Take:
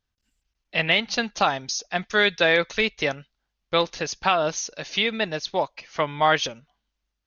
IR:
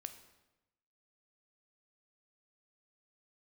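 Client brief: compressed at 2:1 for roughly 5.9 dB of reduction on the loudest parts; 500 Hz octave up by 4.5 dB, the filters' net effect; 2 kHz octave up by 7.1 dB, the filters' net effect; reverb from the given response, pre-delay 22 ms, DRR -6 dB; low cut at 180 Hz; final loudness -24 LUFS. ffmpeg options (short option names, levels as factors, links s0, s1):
-filter_complex "[0:a]highpass=180,equalizer=f=500:t=o:g=5,equalizer=f=2000:t=o:g=8.5,acompressor=threshold=0.1:ratio=2,asplit=2[s0][s1];[1:a]atrim=start_sample=2205,adelay=22[s2];[s1][s2]afir=irnorm=-1:irlink=0,volume=3.16[s3];[s0][s3]amix=inputs=2:normalize=0,volume=0.398"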